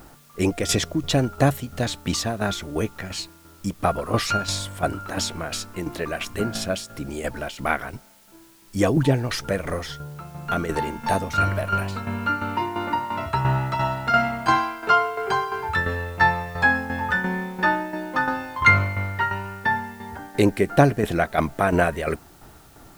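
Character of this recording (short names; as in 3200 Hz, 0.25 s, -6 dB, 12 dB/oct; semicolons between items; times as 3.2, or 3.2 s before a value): tremolo saw down 2.9 Hz, depth 65%; a quantiser's noise floor 10-bit, dither triangular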